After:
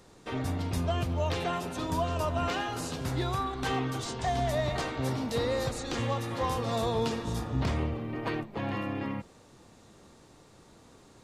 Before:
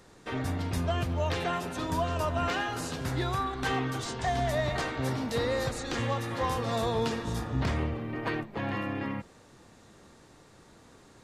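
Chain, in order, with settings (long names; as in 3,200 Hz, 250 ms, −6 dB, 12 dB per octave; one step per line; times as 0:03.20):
parametric band 1,700 Hz −4.5 dB 0.66 octaves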